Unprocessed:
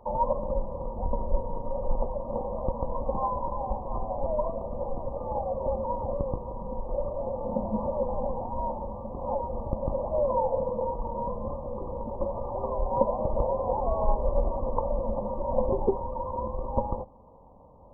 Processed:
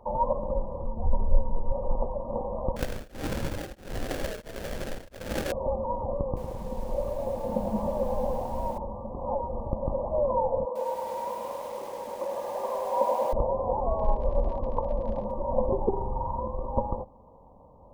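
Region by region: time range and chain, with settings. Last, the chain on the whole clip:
0:00.81–0:01.72: low-shelf EQ 120 Hz +9 dB + string-ensemble chorus
0:02.76–0:05.52: sample-rate reduction 1,100 Hz, jitter 20% + tremolo along a rectified sine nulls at 1.5 Hz
0:06.26–0:08.78: notch filter 970 Hz, Q 28 + feedback echo at a low word length 106 ms, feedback 55%, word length 8 bits, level −7 dB
0:10.65–0:13.33: high-pass filter 470 Hz + feedback echo at a low word length 102 ms, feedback 80%, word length 8 bits, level −4 dB
0:13.95–0:15.30: surface crackle 59 per second −32 dBFS + high-frequency loss of the air 280 metres
0:15.89–0:16.39: parametric band 560 Hz −10.5 dB 0.37 octaves + comb filter 1.4 ms, depth 51% + flutter between parallel walls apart 7.4 metres, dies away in 0.75 s
whole clip: no processing

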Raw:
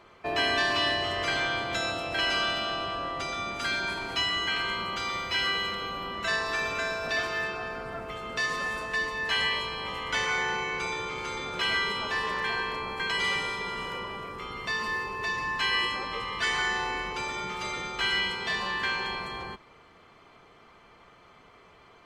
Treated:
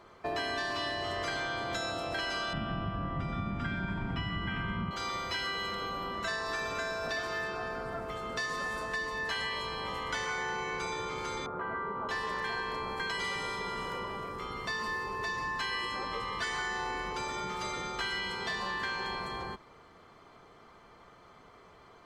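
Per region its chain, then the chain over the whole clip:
0:02.53–0:04.91: Savitzky-Golay smoothing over 25 samples + low shelf with overshoot 280 Hz +14 dB, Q 1.5
0:11.46–0:12.09: Chebyshev low-pass filter 1,300 Hz, order 3 + low-shelf EQ 69 Hz −11 dB
whole clip: parametric band 2,600 Hz −7.5 dB 0.7 octaves; downward compressor, threshold −31 dBFS

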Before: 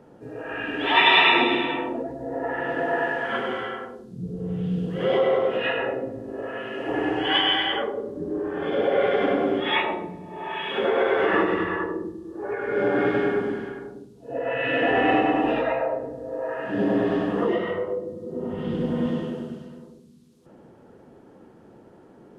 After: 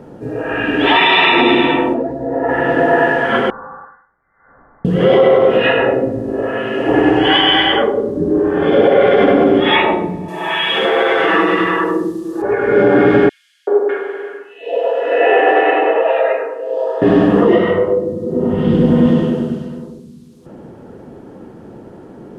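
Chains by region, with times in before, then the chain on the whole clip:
0:01.94–0:02.49: low-pass filter 1,600 Hz 6 dB per octave + spectral tilt +1.5 dB per octave
0:03.50–0:04.85: elliptic high-pass filter 990 Hz, stop band 70 dB + downward compressor 1.5 to 1, threshold −55 dBFS + voice inversion scrambler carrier 2,500 Hz
0:10.28–0:12.42: spectral tilt +3 dB per octave + comb filter 6.1 ms, depth 86% + downward compressor 2 to 1, threshold −25 dBFS
0:13.29–0:17.02: elliptic high-pass filter 400 Hz, stop band 80 dB + high-shelf EQ 3,600 Hz −6 dB + three-band delay without the direct sound highs, lows, mids 380/600 ms, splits 1,100/3,800 Hz
whole clip: low-shelf EQ 480 Hz +5.5 dB; boost into a limiter +11.5 dB; level −1 dB

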